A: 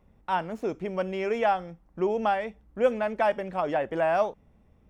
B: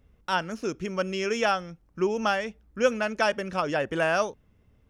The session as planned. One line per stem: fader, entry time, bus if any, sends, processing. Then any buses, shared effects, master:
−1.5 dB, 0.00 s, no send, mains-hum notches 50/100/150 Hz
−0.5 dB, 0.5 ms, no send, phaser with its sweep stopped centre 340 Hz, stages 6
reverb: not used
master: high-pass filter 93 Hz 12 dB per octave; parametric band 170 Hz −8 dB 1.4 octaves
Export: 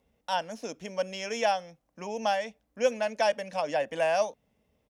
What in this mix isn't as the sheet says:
stem A −1.5 dB → −9.5 dB
stem B: polarity flipped

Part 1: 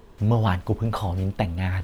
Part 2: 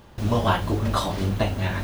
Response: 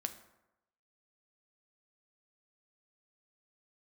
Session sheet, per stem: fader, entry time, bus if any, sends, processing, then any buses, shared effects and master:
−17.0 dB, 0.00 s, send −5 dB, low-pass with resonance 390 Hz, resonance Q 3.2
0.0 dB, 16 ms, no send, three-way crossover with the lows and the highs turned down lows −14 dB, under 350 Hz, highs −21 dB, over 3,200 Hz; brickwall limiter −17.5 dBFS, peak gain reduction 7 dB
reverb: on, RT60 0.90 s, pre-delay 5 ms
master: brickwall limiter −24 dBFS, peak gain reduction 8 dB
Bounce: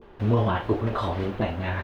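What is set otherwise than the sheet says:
stem 1 −17.0 dB → −8.5 dB
master: missing brickwall limiter −24 dBFS, peak gain reduction 8 dB

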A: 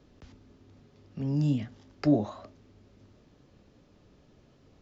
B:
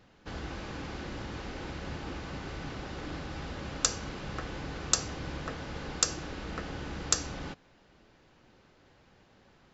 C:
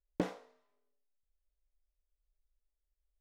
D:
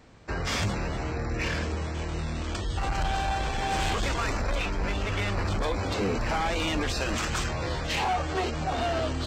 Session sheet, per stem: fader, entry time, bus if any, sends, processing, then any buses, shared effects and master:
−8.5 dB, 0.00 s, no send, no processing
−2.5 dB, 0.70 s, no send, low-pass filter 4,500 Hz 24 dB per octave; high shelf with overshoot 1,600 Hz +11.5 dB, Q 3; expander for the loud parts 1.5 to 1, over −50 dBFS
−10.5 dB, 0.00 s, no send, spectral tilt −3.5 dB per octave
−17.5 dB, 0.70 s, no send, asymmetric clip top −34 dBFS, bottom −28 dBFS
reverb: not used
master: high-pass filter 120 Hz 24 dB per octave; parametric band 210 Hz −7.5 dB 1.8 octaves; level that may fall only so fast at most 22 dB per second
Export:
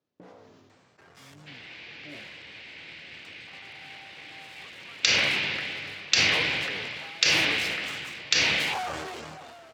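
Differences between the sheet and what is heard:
stem A −8.5 dB → −20.0 dB
stem B: entry 0.70 s → 1.20 s
stem C −10.5 dB → −20.0 dB

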